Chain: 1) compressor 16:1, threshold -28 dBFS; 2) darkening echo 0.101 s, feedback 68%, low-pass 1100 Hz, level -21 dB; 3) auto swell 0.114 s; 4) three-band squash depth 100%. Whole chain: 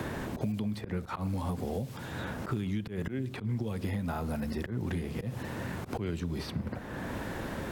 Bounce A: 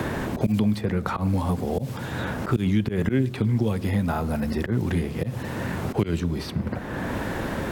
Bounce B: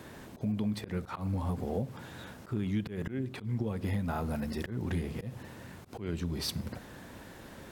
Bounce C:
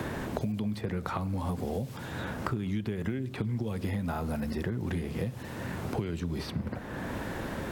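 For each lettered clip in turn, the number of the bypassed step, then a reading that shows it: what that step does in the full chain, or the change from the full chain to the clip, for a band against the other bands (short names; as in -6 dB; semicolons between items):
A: 1, mean gain reduction 5.5 dB; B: 4, momentary loudness spread change +10 LU; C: 3, crest factor change +3.5 dB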